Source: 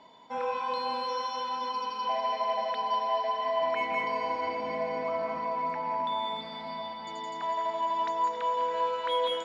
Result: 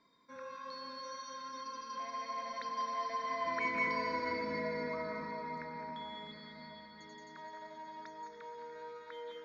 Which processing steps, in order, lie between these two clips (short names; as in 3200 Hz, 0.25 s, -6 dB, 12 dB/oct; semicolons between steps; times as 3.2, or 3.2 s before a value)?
Doppler pass-by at 4.06, 17 m/s, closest 18 m; fixed phaser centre 2900 Hz, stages 6; gain +2.5 dB